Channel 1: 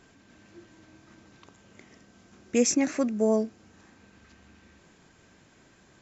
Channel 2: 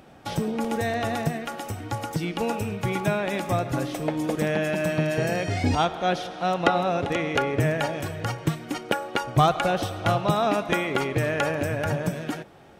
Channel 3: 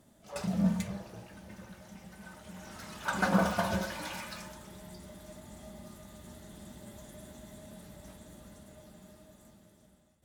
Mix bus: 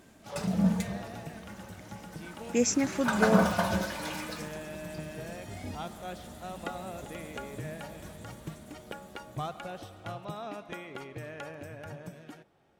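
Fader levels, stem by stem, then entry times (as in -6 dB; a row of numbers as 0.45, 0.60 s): -3.0, -17.0, +2.5 dB; 0.00, 0.00, 0.00 s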